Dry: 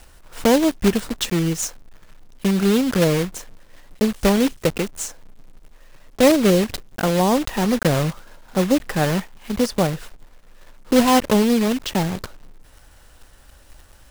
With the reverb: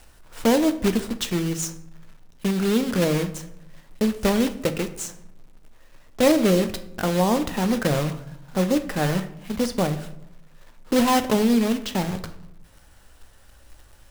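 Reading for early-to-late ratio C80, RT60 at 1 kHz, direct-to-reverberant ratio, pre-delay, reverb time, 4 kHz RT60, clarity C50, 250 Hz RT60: 16.0 dB, 0.75 s, 8.5 dB, 9 ms, 0.80 s, 0.50 s, 13.5 dB, 1.0 s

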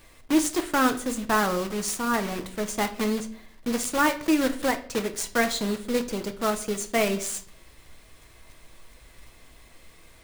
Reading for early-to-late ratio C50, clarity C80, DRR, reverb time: 14.0 dB, 19.0 dB, 6.0 dB, 0.50 s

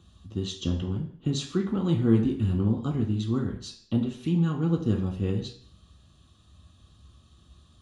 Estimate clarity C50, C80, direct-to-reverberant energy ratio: 8.0 dB, 12.0 dB, −1.5 dB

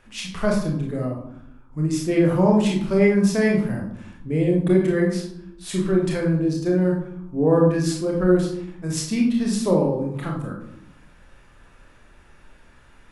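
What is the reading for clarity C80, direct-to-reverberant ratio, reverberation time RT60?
8.5 dB, −1.5 dB, 0.75 s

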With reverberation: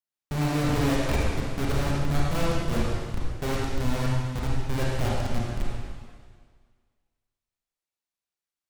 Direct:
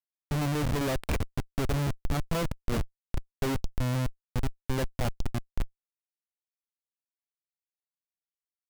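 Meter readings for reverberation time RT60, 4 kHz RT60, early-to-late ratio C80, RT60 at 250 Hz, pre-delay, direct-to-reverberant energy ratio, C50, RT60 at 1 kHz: 1.8 s, 1.7 s, 0.0 dB, 1.7 s, 29 ms, −5.0 dB, −2.5 dB, 1.8 s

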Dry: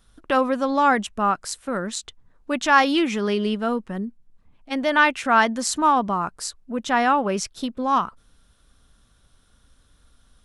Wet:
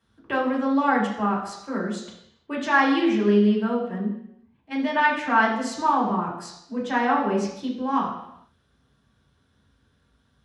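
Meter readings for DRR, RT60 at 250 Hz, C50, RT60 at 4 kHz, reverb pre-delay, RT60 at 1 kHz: −4.5 dB, 0.80 s, 5.0 dB, 0.80 s, 3 ms, 0.85 s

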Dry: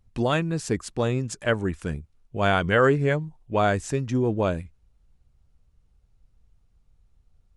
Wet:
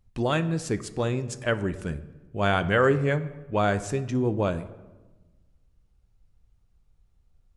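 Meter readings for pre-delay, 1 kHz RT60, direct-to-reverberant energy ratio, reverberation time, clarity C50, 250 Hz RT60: 4 ms, 1.1 s, 12.0 dB, 1.2 s, 15.0 dB, 1.6 s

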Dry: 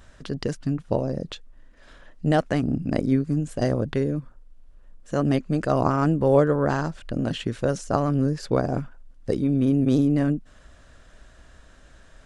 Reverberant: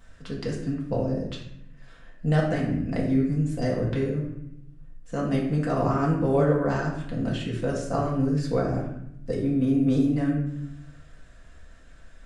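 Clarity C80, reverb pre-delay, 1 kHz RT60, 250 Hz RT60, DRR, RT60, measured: 7.5 dB, 4 ms, 0.75 s, 1.2 s, −5.0 dB, 0.75 s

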